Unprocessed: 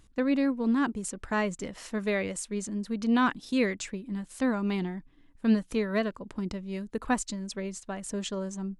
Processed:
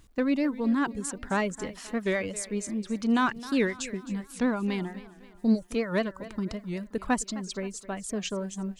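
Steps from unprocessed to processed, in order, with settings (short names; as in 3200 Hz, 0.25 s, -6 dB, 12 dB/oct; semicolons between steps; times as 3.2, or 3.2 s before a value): spectral delete 5.39–5.63, 930–3700 Hz; reverb removal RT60 0.58 s; in parallel at -12 dB: hard clip -28 dBFS, distortion -8 dB; on the sum: bit-crush 12-bit; on a send: thinning echo 0.263 s, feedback 51%, high-pass 160 Hz, level -16.5 dB; on the sum: record warp 78 rpm, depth 160 cents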